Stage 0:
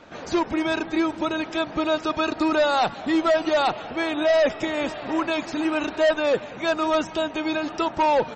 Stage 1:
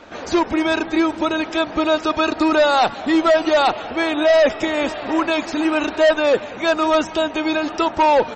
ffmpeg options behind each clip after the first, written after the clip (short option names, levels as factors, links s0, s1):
-af "equalizer=f=150:t=o:w=0.48:g=-10,acontrast=43"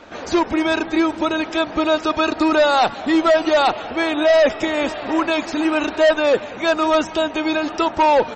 -af anull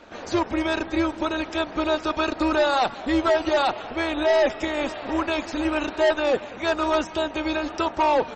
-af "tremolo=f=250:d=0.571,volume=0.708"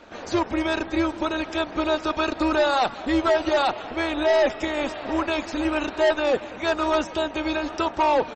-af "aecho=1:1:787:0.075"